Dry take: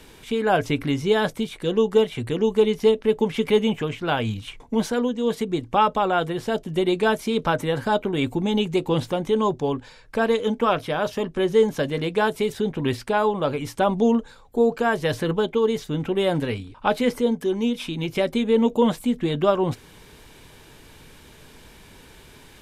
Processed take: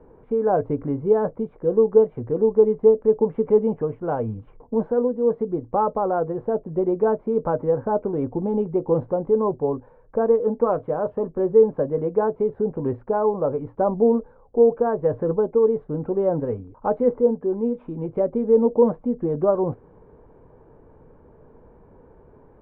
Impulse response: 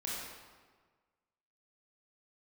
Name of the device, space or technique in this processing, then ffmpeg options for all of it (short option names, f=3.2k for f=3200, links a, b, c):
under water: -af "lowpass=f=1.1k:w=0.5412,lowpass=f=1.1k:w=1.3066,equalizer=f=490:t=o:w=0.53:g=7.5,volume=-2.5dB"